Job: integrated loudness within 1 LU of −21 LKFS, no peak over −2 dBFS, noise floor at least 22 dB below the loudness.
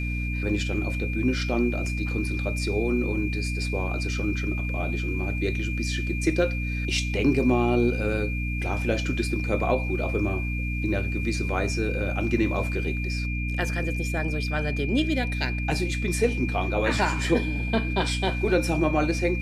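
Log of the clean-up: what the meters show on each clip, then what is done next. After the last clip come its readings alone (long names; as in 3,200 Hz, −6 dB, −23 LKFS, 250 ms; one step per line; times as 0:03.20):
mains hum 60 Hz; hum harmonics up to 300 Hz; level of the hum −26 dBFS; interfering tone 2,400 Hz; level of the tone −33 dBFS; integrated loudness −26.0 LKFS; sample peak −9.0 dBFS; target loudness −21.0 LKFS
→ mains-hum notches 60/120/180/240/300 Hz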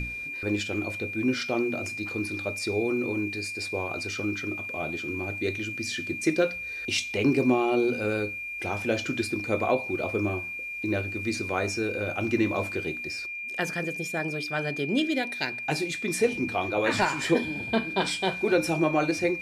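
mains hum none found; interfering tone 2,400 Hz; level of the tone −33 dBFS
→ notch filter 2,400 Hz, Q 30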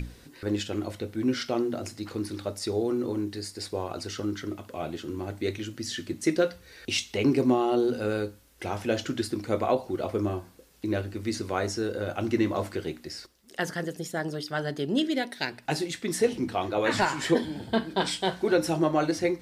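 interfering tone none found; integrated loudness −29.0 LKFS; sample peak −11.0 dBFS; target loudness −21.0 LKFS
→ level +8 dB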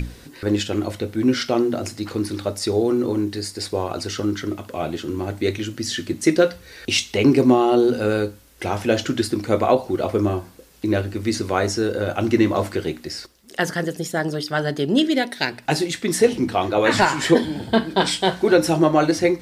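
integrated loudness −21.0 LKFS; sample peak −3.0 dBFS; background noise floor −45 dBFS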